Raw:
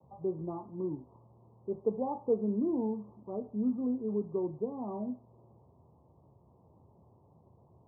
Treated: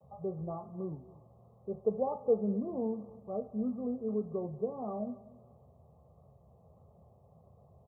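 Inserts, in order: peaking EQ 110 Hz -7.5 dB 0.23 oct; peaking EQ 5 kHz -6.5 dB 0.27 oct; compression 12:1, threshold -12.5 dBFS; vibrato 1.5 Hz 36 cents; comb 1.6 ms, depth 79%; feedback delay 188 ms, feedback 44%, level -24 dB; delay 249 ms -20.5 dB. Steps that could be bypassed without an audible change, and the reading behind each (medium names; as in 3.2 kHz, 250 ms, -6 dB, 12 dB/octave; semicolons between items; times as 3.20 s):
peaking EQ 5 kHz: input has nothing above 960 Hz; compression, threshold -12.5 dBFS: peak at its input -18.0 dBFS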